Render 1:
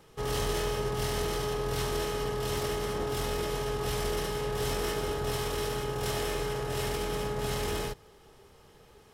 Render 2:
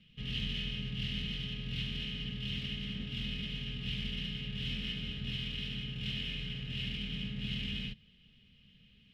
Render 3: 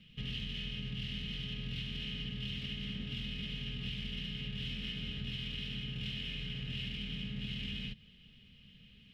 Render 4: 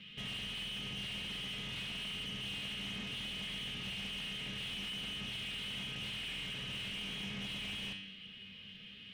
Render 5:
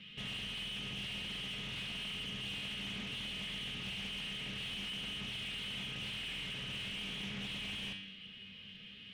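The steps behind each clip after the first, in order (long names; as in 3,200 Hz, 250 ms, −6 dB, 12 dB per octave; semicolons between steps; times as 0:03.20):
drawn EQ curve 110 Hz 0 dB, 220 Hz +9 dB, 370 Hz −22 dB, 530 Hz −17 dB, 860 Hz −29 dB, 1,300 Hz −18 dB, 2,900 Hz +12 dB, 5,800 Hz −15 dB, 9,400 Hz −26 dB; level −5.5 dB
downward compressor, threshold −40 dBFS, peak gain reduction 8.5 dB; level +3.5 dB
tuned comb filter 97 Hz, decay 0.73 s, harmonics all, mix 80%; mid-hump overdrive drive 25 dB, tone 2,700 Hz, clips at −37.5 dBFS; level +5 dB
highs frequency-modulated by the lows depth 0.16 ms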